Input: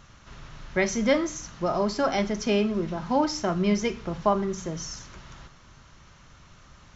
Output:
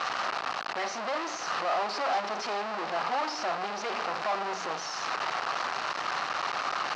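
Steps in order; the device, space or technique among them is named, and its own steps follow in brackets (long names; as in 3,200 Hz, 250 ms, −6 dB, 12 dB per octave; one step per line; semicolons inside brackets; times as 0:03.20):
0:02.41–0:03.35: mains-hum notches 60/120/180/240/300 Hz
home computer beeper (sign of each sample alone; loudspeaker in its box 580–4,500 Hz, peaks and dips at 760 Hz +7 dB, 1,200 Hz +5 dB, 2,200 Hz −3 dB, 3,400 Hz −7 dB)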